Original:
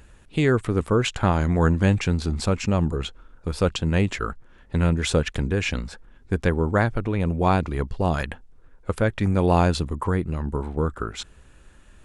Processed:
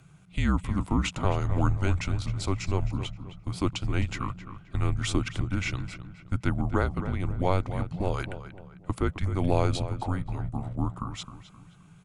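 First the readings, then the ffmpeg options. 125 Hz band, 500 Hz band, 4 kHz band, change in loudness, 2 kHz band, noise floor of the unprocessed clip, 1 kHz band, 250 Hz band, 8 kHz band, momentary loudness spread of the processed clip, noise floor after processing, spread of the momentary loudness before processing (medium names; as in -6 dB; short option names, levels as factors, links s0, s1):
-4.5 dB, -9.0 dB, -5.5 dB, -6.0 dB, -7.0 dB, -52 dBFS, -6.5 dB, -6.5 dB, -5.0 dB, 12 LU, -53 dBFS, 12 LU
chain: -filter_complex "[0:a]bandreject=f=1900:w=10,afreqshift=-190,asplit=2[s0][s1];[s1]adelay=263,lowpass=f=3000:p=1,volume=0.266,asplit=2[s2][s3];[s3]adelay=263,lowpass=f=3000:p=1,volume=0.38,asplit=2[s4][s5];[s5]adelay=263,lowpass=f=3000:p=1,volume=0.38,asplit=2[s6][s7];[s7]adelay=263,lowpass=f=3000:p=1,volume=0.38[s8];[s2][s4][s6][s8]amix=inputs=4:normalize=0[s9];[s0][s9]amix=inputs=2:normalize=0,volume=0.562"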